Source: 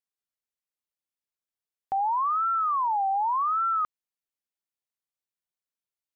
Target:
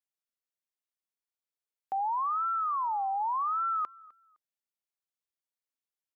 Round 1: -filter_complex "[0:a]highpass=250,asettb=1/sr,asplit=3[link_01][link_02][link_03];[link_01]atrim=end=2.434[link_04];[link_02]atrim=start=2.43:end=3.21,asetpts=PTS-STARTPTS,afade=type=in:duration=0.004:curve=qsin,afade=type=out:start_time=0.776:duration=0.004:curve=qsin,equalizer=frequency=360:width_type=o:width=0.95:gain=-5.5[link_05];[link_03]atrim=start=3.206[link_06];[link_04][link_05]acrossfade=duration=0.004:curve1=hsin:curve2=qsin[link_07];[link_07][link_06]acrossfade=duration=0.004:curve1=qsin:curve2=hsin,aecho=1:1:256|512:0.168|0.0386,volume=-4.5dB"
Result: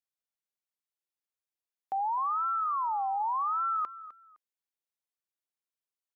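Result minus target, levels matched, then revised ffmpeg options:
echo-to-direct +7.5 dB
-filter_complex "[0:a]highpass=250,asettb=1/sr,asplit=3[link_01][link_02][link_03];[link_01]atrim=end=2.434[link_04];[link_02]atrim=start=2.43:end=3.21,asetpts=PTS-STARTPTS,afade=type=in:duration=0.004:curve=qsin,afade=type=out:start_time=0.776:duration=0.004:curve=qsin,equalizer=frequency=360:width_type=o:width=0.95:gain=-5.5[link_05];[link_03]atrim=start=3.206[link_06];[link_04][link_05]acrossfade=duration=0.004:curve1=hsin:curve2=qsin[link_07];[link_07][link_06]acrossfade=duration=0.004:curve1=qsin:curve2=hsin,aecho=1:1:256|512:0.0708|0.0163,volume=-4.5dB"

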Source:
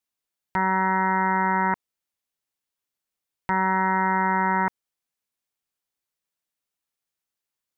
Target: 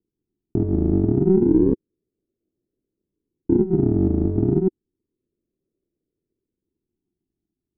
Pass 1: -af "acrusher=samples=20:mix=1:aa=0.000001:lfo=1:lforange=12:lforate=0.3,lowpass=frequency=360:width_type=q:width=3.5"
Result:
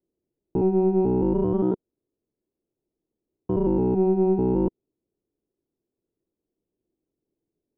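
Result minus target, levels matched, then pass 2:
sample-and-hold swept by an LFO: distortion −14 dB
-af "acrusher=samples=66:mix=1:aa=0.000001:lfo=1:lforange=39.6:lforate=0.3,lowpass=frequency=360:width_type=q:width=3.5"

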